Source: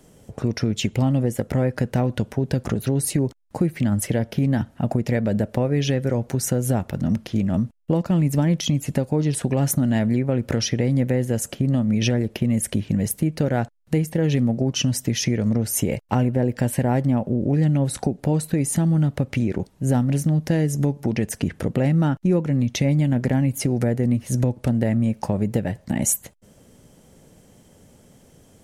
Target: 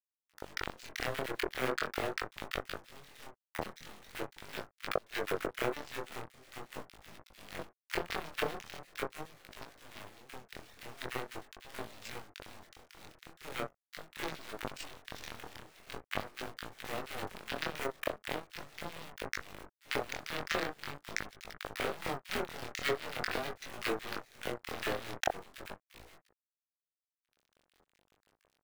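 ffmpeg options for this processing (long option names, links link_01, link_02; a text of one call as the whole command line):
ffmpeg -i in.wav -filter_complex "[0:a]aeval=exprs='if(lt(val(0),0),0.251*val(0),val(0))':channel_layout=same,acrusher=bits=3:mode=log:mix=0:aa=0.000001,asuperstop=centerf=1100:order=4:qfactor=5.6,aemphasis=mode=production:type=bsi,dynaudnorm=framelen=560:gausssize=3:maxgain=9dB,highpass=frequency=520:width_type=q:width=0.5412,highpass=frequency=520:width_type=q:width=1.307,lowpass=frequency=2300:width_type=q:width=0.5176,lowpass=frequency=2300:width_type=q:width=0.7071,lowpass=frequency=2300:width_type=q:width=1.932,afreqshift=-140,acrusher=bits=7:mix=0:aa=0.000001,aeval=exprs='0.2*(cos(1*acos(clip(val(0)/0.2,-1,1)))-cos(1*PI/2))+0.00224*(cos(3*acos(clip(val(0)/0.2,-1,1)))-cos(3*PI/2))+0.0141*(cos(5*acos(clip(val(0)/0.2,-1,1)))-cos(5*PI/2))+0.0398*(cos(7*acos(clip(val(0)/0.2,-1,1)))-cos(7*PI/2))+0.00562*(cos(8*acos(clip(val(0)/0.2,-1,1)))-cos(8*PI/2))':channel_layout=same,flanger=delay=18:depth=7.3:speed=0.42,acrossover=split=1500[link_01][link_02];[link_01]adelay=40[link_03];[link_03][link_02]amix=inputs=2:normalize=0,acompressor=threshold=-45dB:ratio=2.5,volume=13.5dB" out.wav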